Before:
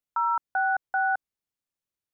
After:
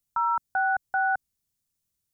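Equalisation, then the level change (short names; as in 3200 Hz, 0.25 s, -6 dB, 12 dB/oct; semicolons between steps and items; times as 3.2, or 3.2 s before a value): tone controls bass +14 dB, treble +12 dB; 0.0 dB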